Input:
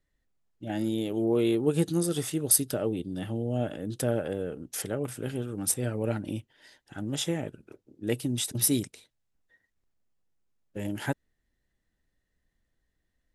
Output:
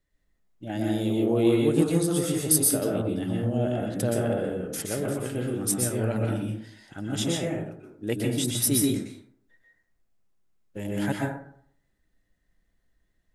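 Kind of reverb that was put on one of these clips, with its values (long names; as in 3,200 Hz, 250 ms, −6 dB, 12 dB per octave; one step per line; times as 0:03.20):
dense smooth reverb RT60 0.61 s, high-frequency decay 0.45×, pre-delay 110 ms, DRR −2 dB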